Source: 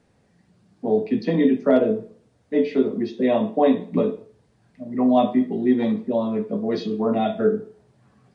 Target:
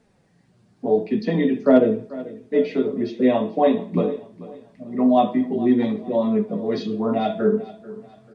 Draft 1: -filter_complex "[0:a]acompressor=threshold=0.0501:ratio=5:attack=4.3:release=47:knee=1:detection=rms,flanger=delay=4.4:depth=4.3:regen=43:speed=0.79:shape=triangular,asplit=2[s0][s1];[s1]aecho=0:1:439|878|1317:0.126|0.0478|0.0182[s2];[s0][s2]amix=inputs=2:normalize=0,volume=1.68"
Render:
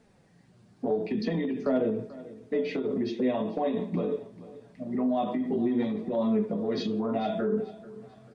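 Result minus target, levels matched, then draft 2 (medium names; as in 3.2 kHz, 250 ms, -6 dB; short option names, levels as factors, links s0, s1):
compression: peak gain reduction +13.5 dB
-filter_complex "[0:a]flanger=delay=4.4:depth=4.3:regen=43:speed=0.79:shape=triangular,asplit=2[s0][s1];[s1]aecho=0:1:439|878|1317:0.126|0.0478|0.0182[s2];[s0][s2]amix=inputs=2:normalize=0,volume=1.68"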